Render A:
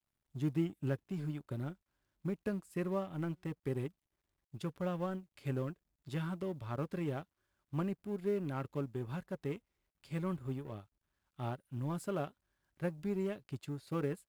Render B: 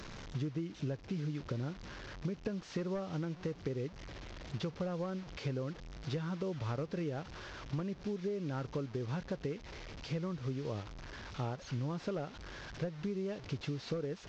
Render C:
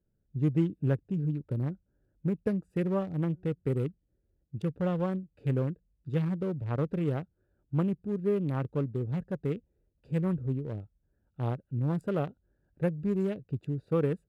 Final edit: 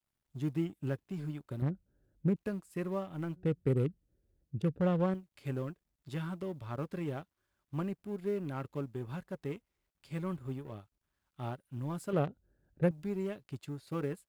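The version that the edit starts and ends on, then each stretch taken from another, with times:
A
0:01.62–0:02.36: punch in from C
0:03.36–0:05.14: punch in from C
0:12.13–0:12.91: punch in from C
not used: B

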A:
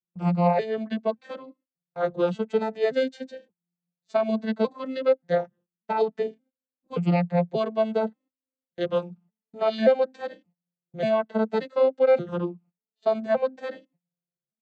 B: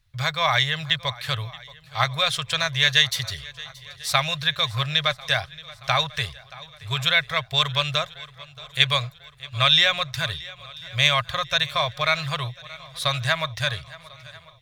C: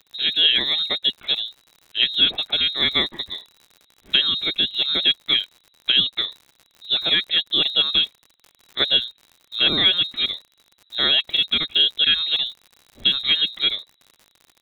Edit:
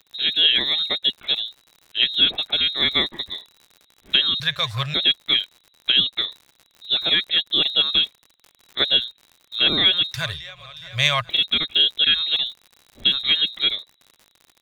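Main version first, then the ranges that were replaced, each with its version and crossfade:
C
0:04.40–0:04.94: punch in from B
0:10.14–0:11.29: punch in from B
not used: A

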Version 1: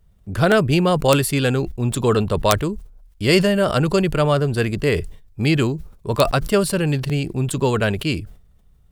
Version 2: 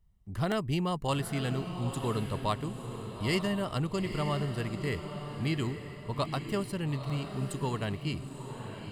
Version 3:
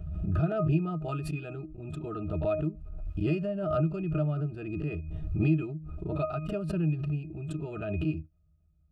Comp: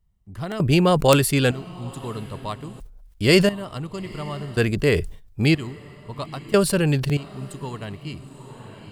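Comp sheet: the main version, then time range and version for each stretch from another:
2
0:00.60–0:01.51: punch in from 1
0:02.80–0:03.49: punch in from 1
0:04.57–0:05.55: punch in from 1
0:06.54–0:07.17: punch in from 1
not used: 3

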